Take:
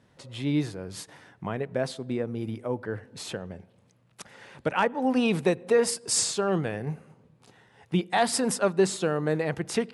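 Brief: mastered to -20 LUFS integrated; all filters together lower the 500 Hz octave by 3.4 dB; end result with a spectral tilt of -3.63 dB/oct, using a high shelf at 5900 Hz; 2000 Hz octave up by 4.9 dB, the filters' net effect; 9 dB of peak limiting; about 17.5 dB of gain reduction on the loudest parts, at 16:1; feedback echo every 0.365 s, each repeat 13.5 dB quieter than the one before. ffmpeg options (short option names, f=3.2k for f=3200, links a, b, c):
-af "equalizer=f=500:t=o:g=-4.5,equalizer=f=2k:t=o:g=5.5,highshelf=f=5.9k:g=8.5,acompressor=threshold=-35dB:ratio=16,alimiter=level_in=5.5dB:limit=-24dB:level=0:latency=1,volume=-5.5dB,aecho=1:1:365|730:0.211|0.0444,volume=21dB"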